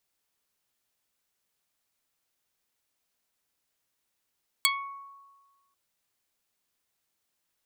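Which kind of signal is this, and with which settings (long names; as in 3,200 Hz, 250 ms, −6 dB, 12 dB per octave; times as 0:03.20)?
Karplus-Strong string C#6, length 1.09 s, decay 1.43 s, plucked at 0.21, dark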